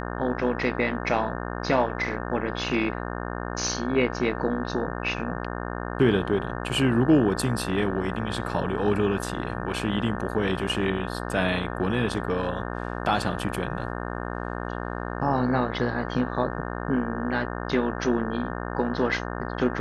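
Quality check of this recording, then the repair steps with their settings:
buzz 60 Hz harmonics 30 -32 dBFS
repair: de-hum 60 Hz, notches 30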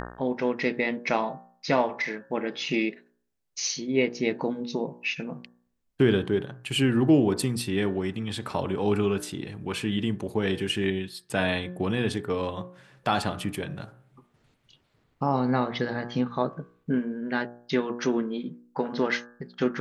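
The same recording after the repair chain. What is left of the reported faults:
nothing left

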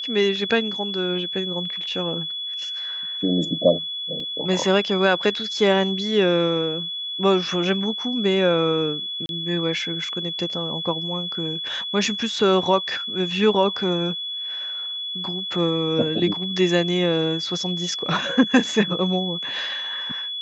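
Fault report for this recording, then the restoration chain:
whine 3.4 kHz -27 dBFS
4.20 s: dropout 2.5 ms
9.26–9.29 s: dropout 31 ms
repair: band-stop 3.4 kHz, Q 30; interpolate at 4.20 s, 2.5 ms; interpolate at 9.26 s, 31 ms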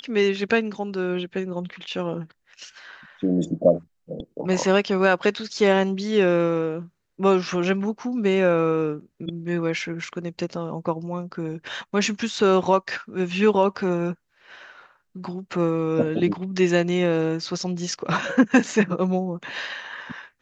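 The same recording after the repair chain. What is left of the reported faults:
nothing left

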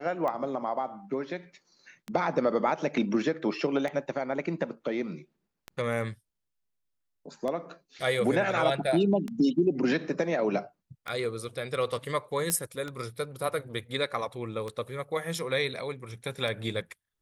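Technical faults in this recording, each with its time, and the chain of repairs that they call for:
tick 33 1/3 rpm -21 dBFS
12.50 s: pop -13 dBFS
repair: de-click

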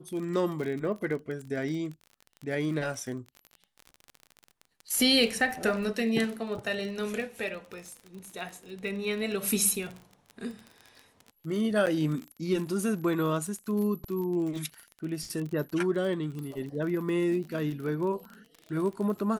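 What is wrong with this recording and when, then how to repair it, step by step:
crackle 31 per s -35 dBFS
11.86–11.87 s: dropout 8.8 ms
16.39 s: pop -27 dBFS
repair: de-click; interpolate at 11.86 s, 8.8 ms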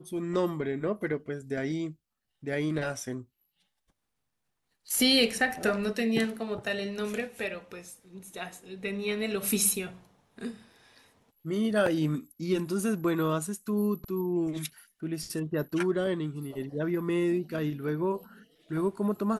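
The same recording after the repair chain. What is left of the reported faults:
nothing left

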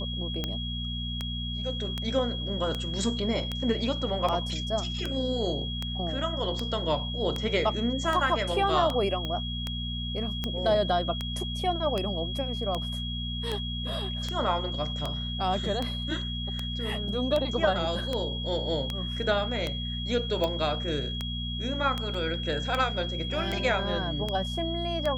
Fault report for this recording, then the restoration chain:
hum 60 Hz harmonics 4 -34 dBFS
tick 78 rpm -16 dBFS
whine 3.3 kHz -35 dBFS
9.25 s: pop -20 dBFS
22.14 s: dropout 3.8 ms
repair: de-click; band-stop 3.3 kHz, Q 30; de-hum 60 Hz, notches 4; interpolate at 22.14 s, 3.8 ms

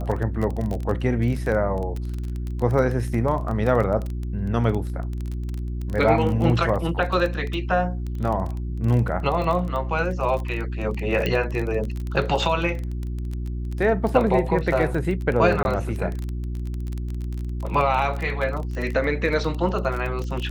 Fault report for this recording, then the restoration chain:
crackle 25 per s -26 dBFS
hum 60 Hz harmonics 6 -28 dBFS
11.26 s: pop -12 dBFS
15.63–15.65 s: dropout 21 ms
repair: de-click; de-hum 60 Hz, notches 6; interpolate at 15.63 s, 21 ms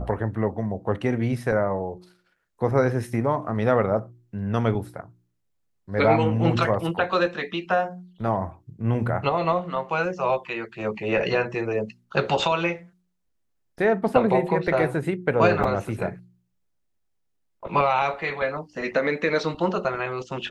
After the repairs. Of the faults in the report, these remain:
nothing left

